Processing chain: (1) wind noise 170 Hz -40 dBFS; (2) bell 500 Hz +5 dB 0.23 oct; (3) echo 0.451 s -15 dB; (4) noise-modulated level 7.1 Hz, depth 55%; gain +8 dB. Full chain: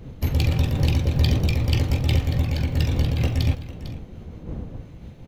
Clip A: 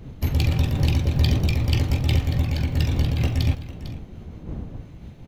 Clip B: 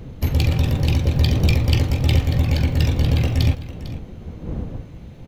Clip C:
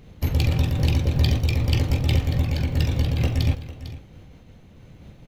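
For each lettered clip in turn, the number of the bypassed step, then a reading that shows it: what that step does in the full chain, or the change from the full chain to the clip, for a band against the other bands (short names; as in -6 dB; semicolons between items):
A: 2, 500 Hz band -1.5 dB; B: 4, momentary loudness spread change -2 LU; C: 1, momentary loudness spread change -8 LU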